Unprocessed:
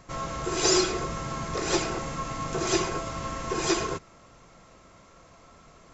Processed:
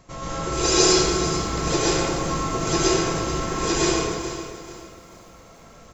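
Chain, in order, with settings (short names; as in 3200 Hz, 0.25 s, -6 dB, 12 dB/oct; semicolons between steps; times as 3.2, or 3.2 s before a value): bell 1500 Hz -4 dB 1.2 oct; speakerphone echo 0.13 s, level -11 dB; plate-style reverb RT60 1.2 s, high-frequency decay 0.8×, pre-delay 0.105 s, DRR -6 dB; lo-fi delay 0.437 s, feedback 35%, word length 8-bit, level -11.5 dB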